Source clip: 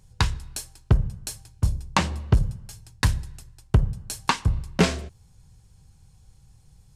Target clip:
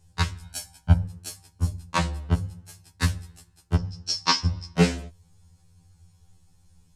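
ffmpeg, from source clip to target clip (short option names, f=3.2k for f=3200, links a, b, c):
-filter_complex "[0:a]asettb=1/sr,asplit=3[a][b][c];[a]atrim=end=0.424[d];[b]atrim=start=0.42:end=1.04,asetpts=PTS-STARTPTS,afade=t=in:d=0.004:c=qsin,afade=t=out:st=0.616:d=0.004:c=qsin,aecho=1:1:1.3:0.96,atrim=end_sample=27342[e];[c]atrim=start=1.036[f];[d][e]acrossfade=d=0.004:c1=hsin:c2=qsin[g];[g][f]acrossfade=d=0.004:c1=qsin:c2=hsin,asettb=1/sr,asplit=3[h][i][j];[h]atrim=end=3.754[k];[i]atrim=start=3.75:end=4.76,asetpts=PTS-STARTPTS,afade=t=in:d=0.004:c=qsin,afade=t=out:st=1.006:d=0.004:c=qsin,lowpass=f=5.3k:t=q:w=12[l];[j]atrim=start=4.756[m];[k][l]acrossfade=d=0.004:c1=hsin:c2=qsin[n];[n][m]acrossfade=d=0.004:c1=qsin:c2=hsin,afftfilt=real='re*2*eq(mod(b,4),0)':imag='im*2*eq(mod(b,4),0)':win_size=2048:overlap=0.75"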